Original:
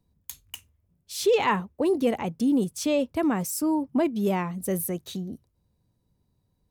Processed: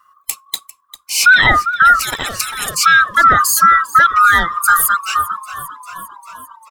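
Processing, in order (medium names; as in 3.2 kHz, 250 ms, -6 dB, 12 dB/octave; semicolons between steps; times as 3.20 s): split-band scrambler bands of 1 kHz; frequency-shifting echo 398 ms, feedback 62%, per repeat -57 Hz, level -13.5 dB; reverb removal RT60 1.7 s; loudness maximiser +18.5 dB; 1.99–2.75 s: spectrum-flattening compressor 4:1; trim -1 dB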